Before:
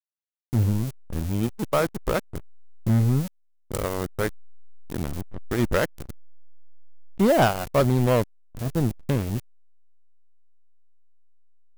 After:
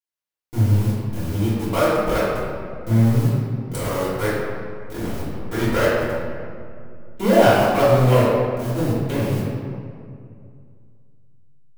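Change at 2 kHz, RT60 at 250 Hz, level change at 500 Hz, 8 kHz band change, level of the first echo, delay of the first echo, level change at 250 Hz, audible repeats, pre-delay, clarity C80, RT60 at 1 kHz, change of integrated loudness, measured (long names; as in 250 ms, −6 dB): +6.0 dB, 2.6 s, +6.5 dB, +2.5 dB, no echo audible, no echo audible, +4.0 dB, no echo audible, 3 ms, 0.0 dB, 2.2 s, +5.0 dB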